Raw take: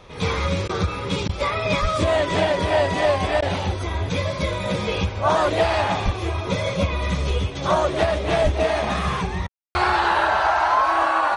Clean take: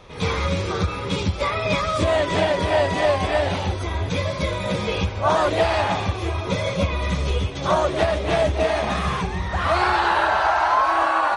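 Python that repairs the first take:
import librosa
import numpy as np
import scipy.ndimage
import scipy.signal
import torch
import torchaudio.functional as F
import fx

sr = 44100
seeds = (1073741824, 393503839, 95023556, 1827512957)

y = fx.highpass(x, sr, hz=140.0, slope=24, at=(1.81, 1.93), fade=0.02)
y = fx.highpass(y, sr, hz=140.0, slope=24, at=(6.04, 6.16), fade=0.02)
y = fx.highpass(y, sr, hz=140.0, slope=24, at=(8.43, 8.55), fade=0.02)
y = fx.fix_ambience(y, sr, seeds[0], print_start_s=0.0, print_end_s=0.5, start_s=9.48, end_s=9.75)
y = fx.fix_interpolate(y, sr, at_s=(0.68, 1.28, 3.41, 9.47), length_ms=11.0)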